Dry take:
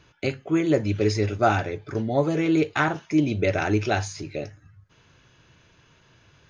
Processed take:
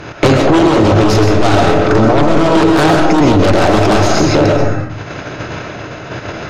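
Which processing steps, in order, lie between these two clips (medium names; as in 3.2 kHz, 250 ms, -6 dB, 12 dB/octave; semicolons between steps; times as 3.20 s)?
spectral levelling over time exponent 0.6; de-hum 87.59 Hz, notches 6; gate -38 dBFS, range -14 dB; in parallel at -11 dB: sine folder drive 18 dB, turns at -3.5 dBFS; on the sum: treble shelf 5.8 kHz -10.5 dB; on a send at -1.5 dB: reverberation RT60 0.60 s, pre-delay 90 ms; on the sum: dynamic bell 2.1 kHz, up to -6 dB, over -34 dBFS, Q 1.5; loudness maximiser +11 dB; trim -1 dB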